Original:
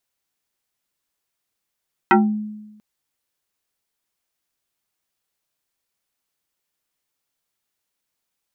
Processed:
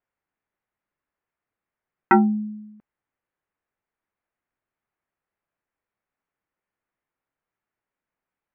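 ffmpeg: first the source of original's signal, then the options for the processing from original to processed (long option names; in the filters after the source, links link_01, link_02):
-f lavfi -i "aevalsrc='0.398*pow(10,-3*t/1.07)*sin(2*PI*212*t+3.5*pow(10,-3*t/0.3)*sin(2*PI*2.7*212*t))':duration=0.69:sample_rate=44100"
-af "lowpass=frequency=2100:width=0.5412,lowpass=frequency=2100:width=1.3066"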